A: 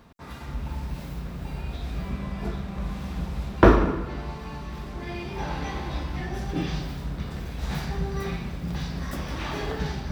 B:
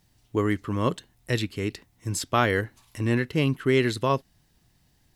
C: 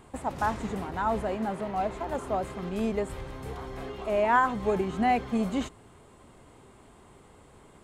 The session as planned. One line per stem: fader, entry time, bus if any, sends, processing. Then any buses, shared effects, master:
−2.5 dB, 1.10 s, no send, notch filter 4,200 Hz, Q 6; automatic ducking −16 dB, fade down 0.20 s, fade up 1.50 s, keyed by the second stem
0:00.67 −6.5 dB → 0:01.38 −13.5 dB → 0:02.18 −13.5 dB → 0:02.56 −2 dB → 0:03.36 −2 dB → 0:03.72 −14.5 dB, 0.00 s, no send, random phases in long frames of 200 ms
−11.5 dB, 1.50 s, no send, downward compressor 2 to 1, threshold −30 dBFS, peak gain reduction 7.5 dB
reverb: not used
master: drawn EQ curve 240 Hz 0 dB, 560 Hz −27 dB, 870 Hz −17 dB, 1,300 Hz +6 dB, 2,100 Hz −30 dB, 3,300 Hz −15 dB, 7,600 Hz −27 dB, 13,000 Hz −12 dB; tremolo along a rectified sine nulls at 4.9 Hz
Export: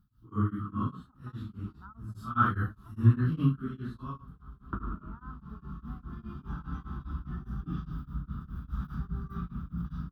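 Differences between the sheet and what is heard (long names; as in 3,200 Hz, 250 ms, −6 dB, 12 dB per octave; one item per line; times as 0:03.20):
stem B −6.5 dB → +0.5 dB
stem C: entry 1.50 s → 0.85 s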